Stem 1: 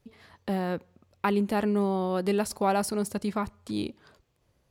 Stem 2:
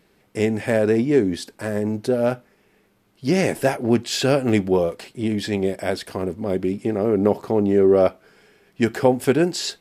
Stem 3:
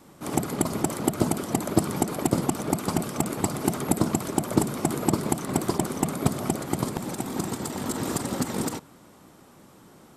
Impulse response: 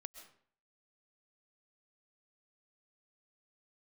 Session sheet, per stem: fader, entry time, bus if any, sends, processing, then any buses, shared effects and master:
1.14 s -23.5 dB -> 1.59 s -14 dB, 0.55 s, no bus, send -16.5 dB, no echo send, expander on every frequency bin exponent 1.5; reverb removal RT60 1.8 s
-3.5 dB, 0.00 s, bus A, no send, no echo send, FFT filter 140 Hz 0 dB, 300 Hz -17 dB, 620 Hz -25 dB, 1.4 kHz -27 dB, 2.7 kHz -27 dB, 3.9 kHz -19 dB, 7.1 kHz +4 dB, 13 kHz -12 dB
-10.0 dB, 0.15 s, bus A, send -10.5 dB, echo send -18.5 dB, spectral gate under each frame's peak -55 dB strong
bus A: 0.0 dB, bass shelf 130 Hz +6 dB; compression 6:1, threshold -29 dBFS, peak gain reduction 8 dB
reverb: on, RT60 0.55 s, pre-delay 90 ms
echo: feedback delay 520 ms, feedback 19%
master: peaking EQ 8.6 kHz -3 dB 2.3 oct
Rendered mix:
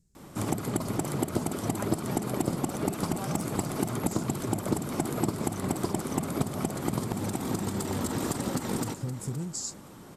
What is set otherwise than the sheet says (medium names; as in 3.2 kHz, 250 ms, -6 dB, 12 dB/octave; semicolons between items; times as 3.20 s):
stem 3 -10.0 dB -> +1.5 dB; master: missing peaking EQ 8.6 kHz -3 dB 2.3 oct